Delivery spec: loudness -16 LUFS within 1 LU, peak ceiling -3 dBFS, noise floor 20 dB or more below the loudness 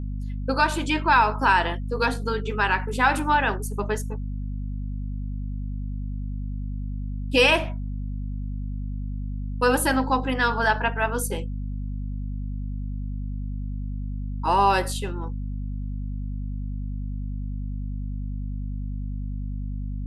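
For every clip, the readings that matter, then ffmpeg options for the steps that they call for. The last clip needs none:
hum 50 Hz; highest harmonic 250 Hz; hum level -27 dBFS; loudness -26.5 LUFS; peak level -7.0 dBFS; loudness target -16.0 LUFS
-> -af "bandreject=f=50:t=h:w=4,bandreject=f=100:t=h:w=4,bandreject=f=150:t=h:w=4,bandreject=f=200:t=h:w=4,bandreject=f=250:t=h:w=4"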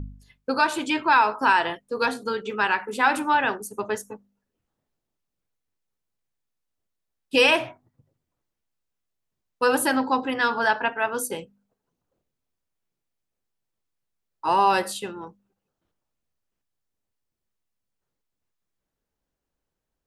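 hum not found; loudness -23.0 LUFS; peak level -7.0 dBFS; loudness target -16.0 LUFS
-> -af "volume=2.24,alimiter=limit=0.708:level=0:latency=1"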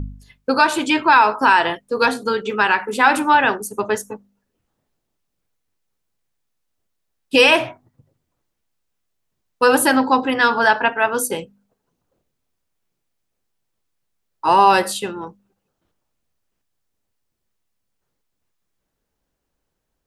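loudness -16.5 LUFS; peak level -3.0 dBFS; noise floor -76 dBFS

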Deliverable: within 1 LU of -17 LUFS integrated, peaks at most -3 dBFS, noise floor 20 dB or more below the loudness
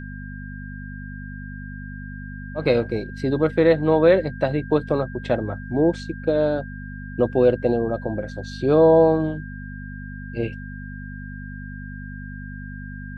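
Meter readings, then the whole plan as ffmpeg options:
hum 50 Hz; highest harmonic 250 Hz; hum level -33 dBFS; steady tone 1.6 kHz; tone level -40 dBFS; loudness -21.0 LUFS; peak level -4.5 dBFS; loudness target -17.0 LUFS
-> -af "bandreject=f=50:t=h:w=4,bandreject=f=100:t=h:w=4,bandreject=f=150:t=h:w=4,bandreject=f=200:t=h:w=4,bandreject=f=250:t=h:w=4"
-af "bandreject=f=1600:w=30"
-af "volume=1.58,alimiter=limit=0.708:level=0:latency=1"

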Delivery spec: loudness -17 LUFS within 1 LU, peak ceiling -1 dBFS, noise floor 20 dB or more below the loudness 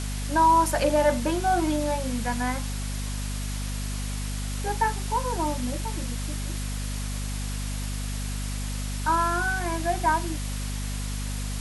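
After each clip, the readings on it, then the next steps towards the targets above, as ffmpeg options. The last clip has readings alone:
hum 50 Hz; highest harmonic 250 Hz; hum level -28 dBFS; noise floor -30 dBFS; noise floor target -48 dBFS; loudness -27.5 LUFS; peak level -10.0 dBFS; loudness target -17.0 LUFS
-> -af "bandreject=f=50:t=h:w=4,bandreject=f=100:t=h:w=4,bandreject=f=150:t=h:w=4,bandreject=f=200:t=h:w=4,bandreject=f=250:t=h:w=4"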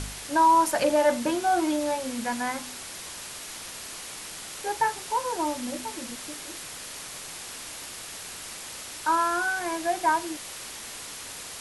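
hum not found; noise floor -40 dBFS; noise floor target -49 dBFS
-> -af "afftdn=nr=9:nf=-40"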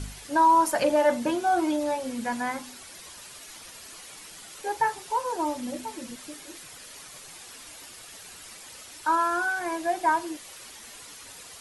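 noise floor -46 dBFS; loudness -26.0 LUFS; peak level -11.0 dBFS; loudness target -17.0 LUFS
-> -af "volume=2.82"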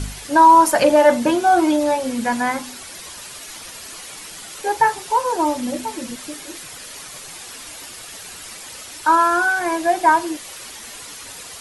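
loudness -17.0 LUFS; peak level -2.0 dBFS; noise floor -37 dBFS

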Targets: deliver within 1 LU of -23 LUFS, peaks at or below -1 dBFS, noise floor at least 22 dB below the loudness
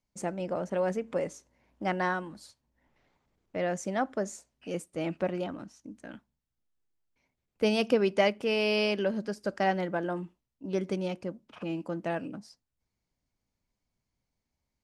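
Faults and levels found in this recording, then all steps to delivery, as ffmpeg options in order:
loudness -31.0 LUFS; peak level -12.0 dBFS; loudness target -23.0 LUFS
-> -af "volume=2.51"

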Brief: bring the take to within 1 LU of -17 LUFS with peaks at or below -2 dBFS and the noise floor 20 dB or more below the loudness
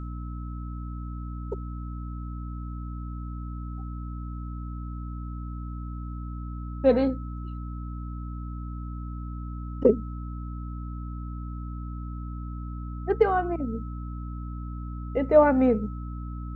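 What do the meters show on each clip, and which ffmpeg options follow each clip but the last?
hum 60 Hz; highest harmonic 300 Hz; hum level -32 dBFS; steady tone 1.3 kHz; tone level -46 dBFS; loudness -30.0 LUFS; peak level -6.0 dBFS; loudness target -17.0 LUFS
-> -af "bandreject=f=60:t=h:w=4,bandreject=f=120:t=h:w=4,bandreject=f=180:t=h:w=4,bandreject=f=240:t=h:w=4,bandreject=f=300:t=h:w=4"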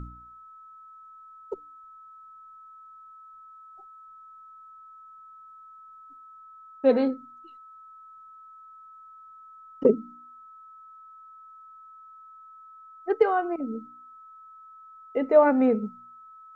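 hum not found; steady tone 1.3 kHz; tone level -46 dBFS
-> -af "bandreject=f=1300:w=30"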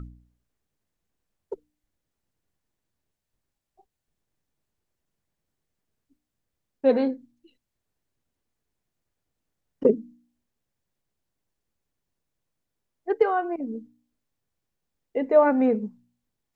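steady tone not found; loudness -24.0 LUFS; peak level -6.5 dBFS; loudness target -17.0 LUFS
-> -af "volume=2.24,alimiter=limit=0.794:level=0:latency=1"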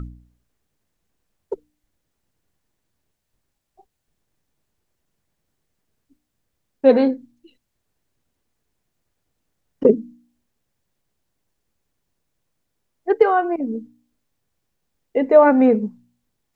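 loudness -17.5 LUFS; peak level -2.0 dBFS; noise floor -76 dBFS

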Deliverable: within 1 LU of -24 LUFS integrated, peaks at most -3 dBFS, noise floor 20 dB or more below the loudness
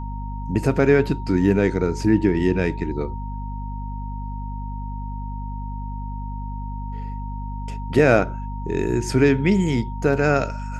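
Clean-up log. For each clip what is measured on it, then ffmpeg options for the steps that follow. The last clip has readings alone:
hum 50 Hz; highest harmonic 250 Hz; hum level -27 dBFS; steady tone 930 Hz; tone level -36 dBFS; loudness -23.0 LUFS; peak level -3.0 dBFS; loudness target -24.0 LUFS
-> -af "bandreject=f=50:t=h:w=4,bandreject=f=100:t=h:w=4,bandreject=f=150:t=h:w=4,bandreject=f=200:t=h:w=4,bandreject=f=250:t=h:w=4"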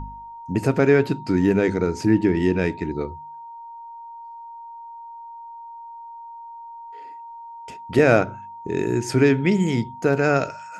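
hum not found; steady tone 930 Hz; tone level -36 dBFS
-> -af "bandreject=f=930:w=30"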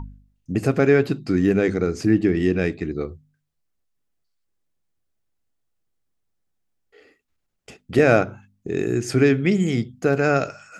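steady tone not found; loudness -21.0 LUFS; peak level -4.0 dBFS; loudness target -24.0 LUFS
-> -af "volume=0.708"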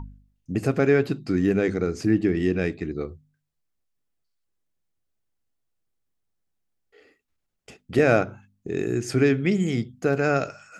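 loudness -24.0 LUFS; peak level -7.0 dBFS; noise floor -77 dBFS

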